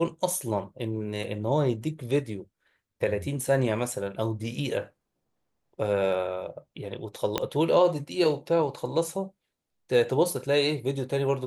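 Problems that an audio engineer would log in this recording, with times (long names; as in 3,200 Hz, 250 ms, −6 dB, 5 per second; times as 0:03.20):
0:07.38: click −10 dBFS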